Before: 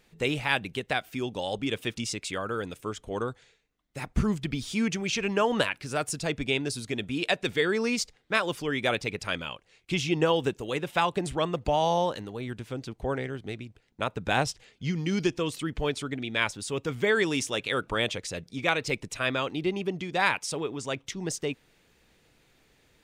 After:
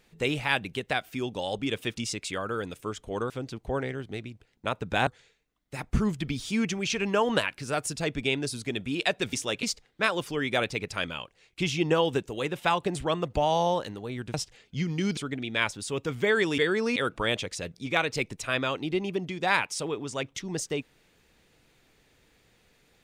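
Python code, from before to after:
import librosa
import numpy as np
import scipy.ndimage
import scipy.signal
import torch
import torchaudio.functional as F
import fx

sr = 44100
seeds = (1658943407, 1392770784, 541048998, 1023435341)

y = fx.edit(x, sr, fx.swap(start_s=7.56, length_s=0.38, other_s=17.38, other_length_s=0.3),
    fx.move(start_s=12.65, length_s=1.77, to_s=3.3),
    fx.cut(start_s=15.25, length_s=0.72), tone=tone)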